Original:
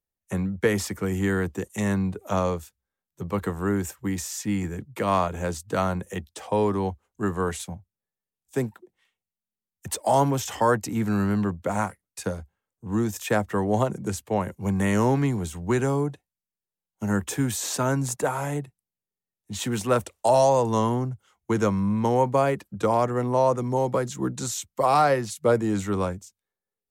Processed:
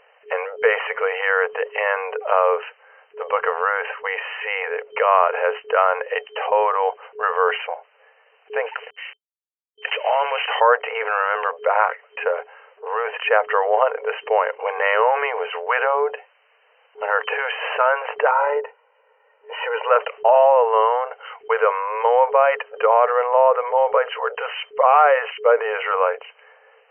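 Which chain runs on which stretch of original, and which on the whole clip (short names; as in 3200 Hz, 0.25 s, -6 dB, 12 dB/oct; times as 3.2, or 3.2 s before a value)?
8.66–10.46 CVSD 64 kbps + weighting filter D + compressor 2:1, threshold -31 dBFS
18.31–19.9 band-pass 780 Hz, Q 0.92 + comb 2.1 ms, depth 69%
whole clip: FFT band-pass 430–3100 Hz; dynamic EQ 1300 Hz, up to +4 dB, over -39 dBFS, Q 2.3; fast leveller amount 50%; gain +4 dB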